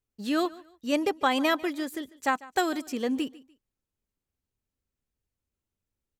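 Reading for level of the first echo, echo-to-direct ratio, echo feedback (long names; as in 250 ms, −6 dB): −20.5 dB, −20.0 dB, 28%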